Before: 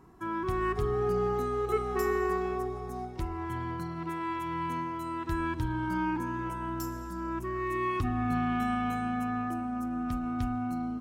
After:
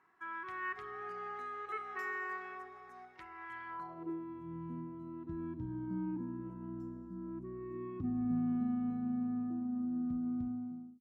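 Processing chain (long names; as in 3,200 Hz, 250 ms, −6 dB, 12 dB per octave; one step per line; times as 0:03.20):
fade-out on the ending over 0.68 s
band-pass filter sweep 1,800 Hz → 210 Hz, 0:03.65–0:04.25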